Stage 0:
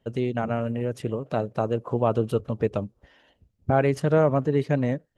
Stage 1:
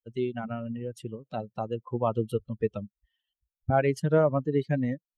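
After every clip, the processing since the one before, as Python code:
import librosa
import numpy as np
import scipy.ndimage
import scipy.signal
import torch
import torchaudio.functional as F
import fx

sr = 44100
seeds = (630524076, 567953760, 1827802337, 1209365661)

y = fx.bin_expand(x, sr, power=2.0)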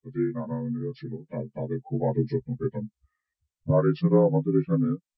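y = fx.partial_stretch(x, sr, pct=80)
y = fx.low_shelf(y, sr, hz=270.0, db=8.0)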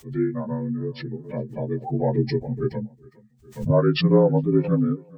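y = fx.echo_feedback(x, sr, ms=412, feedback_pct=26, wet_db=-24)
y = fx.pre_swell(y, sr, db_per_s=130.0)
y = y * librosa.db_to_amplitude(3.0)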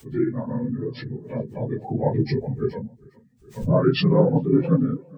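y = fx.phase_scramble(x, sr, seeds[0], window_ms=50)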